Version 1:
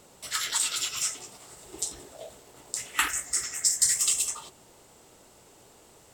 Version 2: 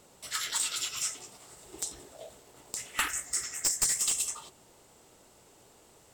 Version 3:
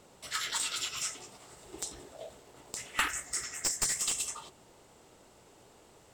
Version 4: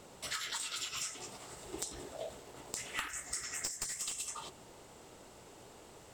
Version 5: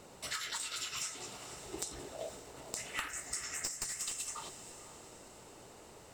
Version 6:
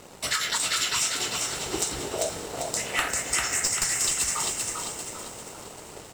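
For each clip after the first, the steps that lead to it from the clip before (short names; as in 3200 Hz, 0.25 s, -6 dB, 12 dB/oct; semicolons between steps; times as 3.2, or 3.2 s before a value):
one-sided fold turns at -17 dBFS; gain -3.5 dB
high shelf 6400 Hz -8.5 dB; gain +1.5 dB
compressor 16:1, threshold -39 dBFS, peak gain reduction 15.5 dB; gain +3.5 dB
notch 3300 Hz, Q 16; diffused feedback echo 0.493 s, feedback 45%, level -13 dB
frequency-shifting echo 0.395 s, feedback 48%, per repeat +45 Hz, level -4 dB; sample leveller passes 2; gain +5 dB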